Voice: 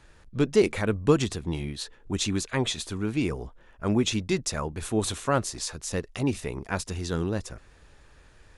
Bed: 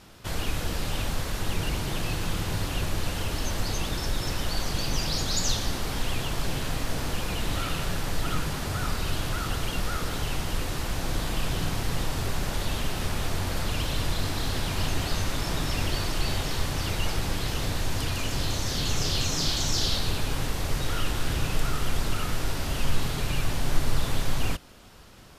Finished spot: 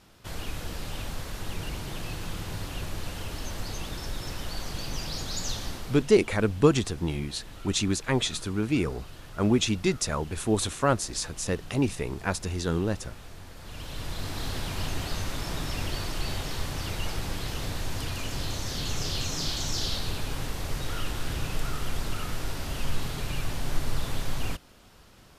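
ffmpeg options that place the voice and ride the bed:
-filter_complex "[0:a]adelay=5550,volume=1dB[a];[1:a]volume=7dB,afade=t=out:st=5.67:d=0.43:silence=0.281838,afade=t=in:st=13.58:d=0.86:silence=0.223872[b];[a][b]amix=inputs=2:normalize=0"

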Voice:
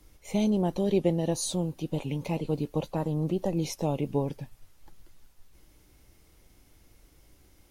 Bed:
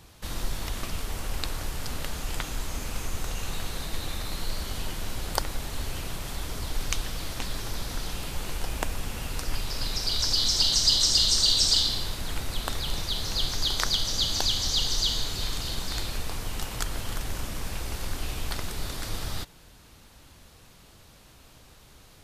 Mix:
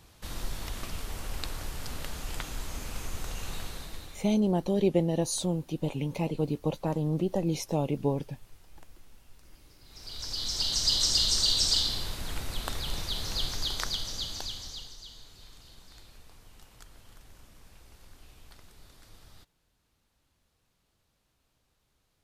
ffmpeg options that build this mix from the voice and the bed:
-filter_complex "[0:a]adelay=3900,volume=0dB[a];[1:a]volume=20dB,afade=t=out:st=3.57:d=0.78:silence=0.0668344,afade=t=in:st=9.84:d=1.18:silence=0.0595662,afade=t=out:st=13.36:d=1.6:silence=0.125893[b];[a][b]amix=inputs=2:normalize=0"

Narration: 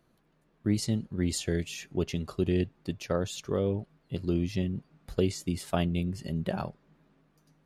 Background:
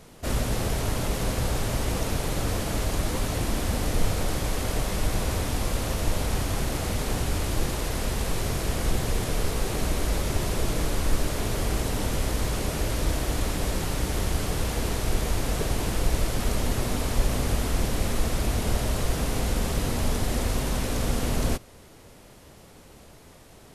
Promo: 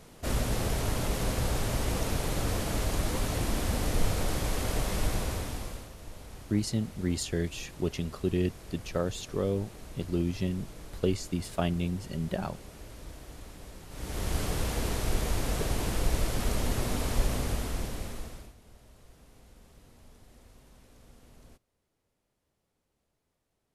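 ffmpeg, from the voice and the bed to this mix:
-filter_complex "[0:a]adelay=5850,volume=-1dB[a];[1:a]volume=13dB,afade=t=out:st=5.04:d=0.86:silence=0.149624,afade=t=in:st=13.89:d=0.48:silence=0.158489,afade=t=out:st=17.2:d=1.34:silence=0.0473151[b];[a][b]amix=inputs=2:normalize=0"

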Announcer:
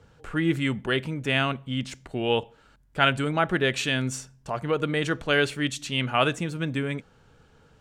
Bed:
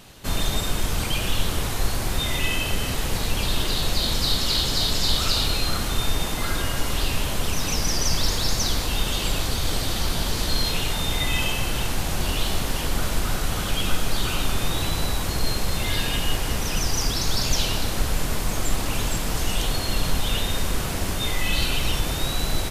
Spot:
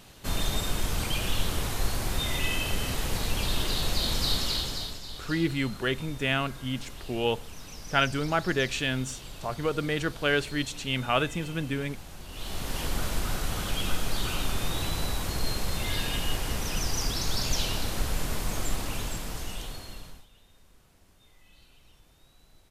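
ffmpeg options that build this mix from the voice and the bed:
-filter_complex "[0:a]adelay=4950,volume=-3dB[a];[1:a]volume=9dB,afade=t=out:st=4.35:d=0.66:silence=0.188365,afade=t=in:st=12.29:d=0.53:silence=0.211349,afade=t=out:st=18.59:d=1.68:silence=0.0334965[b];[a][b]amix=inputs=2:normalize=0"

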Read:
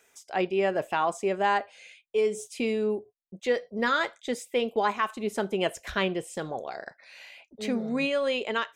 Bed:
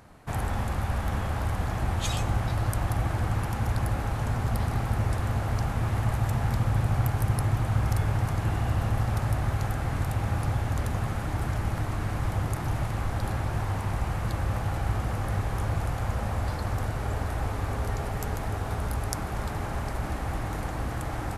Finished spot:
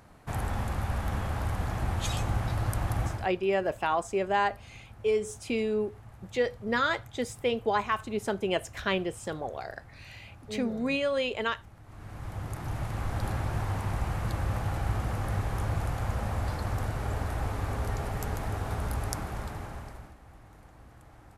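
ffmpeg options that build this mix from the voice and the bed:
-filter_complex "[0:a]adelay=2900,volume=-1.5dB[a];[1:a]volume=18.5dB,afade=t=out:st=3.04:d=0.26:silence=0.0944061,afade=t=in:st=11.83:d=1.39:silence=0.0891251,afade=t=out:st=19.06:d=1.09:silence=0.105925[b];[a][b]amix=inputs=2:normalize=0"

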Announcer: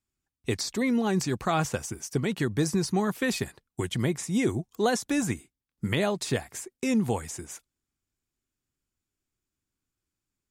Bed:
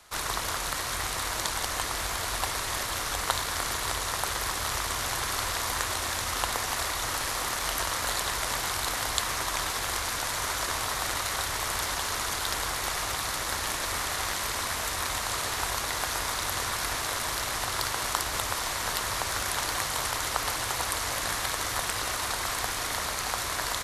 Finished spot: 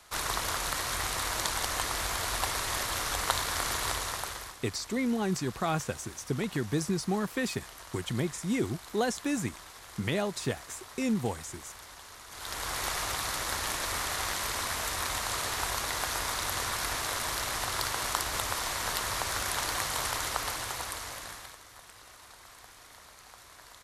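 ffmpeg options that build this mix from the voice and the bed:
-filter_complex "[0:a]adelay=4150,volume=-4dB[a];[1:a]volume=15dB,afade=t=out:st=3.87:d=0.7:silence=0.141254,afade=t=in:st=12.29:d=0.51:silence=0.158489,afade=t=out:st=20.15:d=1.46:silence=0.105925[b];[a][b]amix=inputs=2:normalize=0"

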